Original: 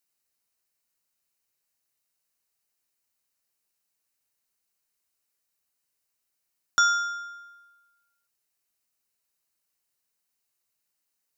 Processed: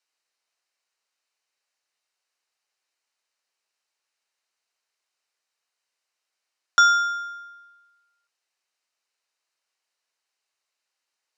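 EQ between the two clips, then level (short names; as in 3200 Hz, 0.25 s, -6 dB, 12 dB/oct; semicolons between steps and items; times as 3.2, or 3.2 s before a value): HPF 530 Hz; LPF 5200 Hz 12 dB/oct; +5.5 dB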